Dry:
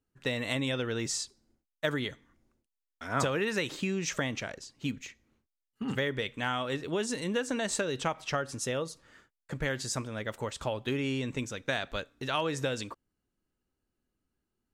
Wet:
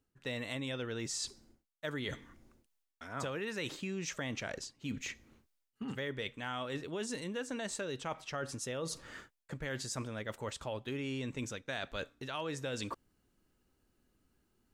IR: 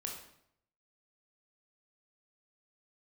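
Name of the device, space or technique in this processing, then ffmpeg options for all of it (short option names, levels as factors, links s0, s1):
compression on the reversed sound: -af "areverse,acompressor=threshold=0.00398:ratio=4,areverse,volume=2.66"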